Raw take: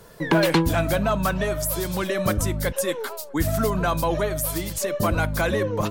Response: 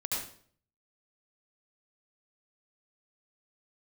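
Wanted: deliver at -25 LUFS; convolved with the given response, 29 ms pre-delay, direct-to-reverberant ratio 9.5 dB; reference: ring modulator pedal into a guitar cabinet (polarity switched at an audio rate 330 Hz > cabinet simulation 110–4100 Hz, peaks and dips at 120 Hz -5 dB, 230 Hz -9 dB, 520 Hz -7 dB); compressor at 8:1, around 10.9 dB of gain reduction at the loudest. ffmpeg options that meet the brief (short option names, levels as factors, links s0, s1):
-filter_complex "[0:a]acompressor=threshold=0.0501:ratio=8,asplit=2[s0][s1];[1:a]atrim=start_sample=2205,adelay=29[s2];[s1][s2]afir=irnorm=-1:irlink=0,volume=0.2[s3];[s0][s3]amix=inputs=2:normalize=0,aeval=exprs='val(0)*sgn(sin(2*PI*330*n/s))':c=same,highpass=110,equalizer=f=120:t=q:w=4:g=-5,equalizer=f=230:t=q:w=4:g=-9,equalizer=f=520:t=q:w=4:g=-7,lowpass=f=4100:w=0.5412,lowpass=f=4100:w=1.3066,volume=2.24"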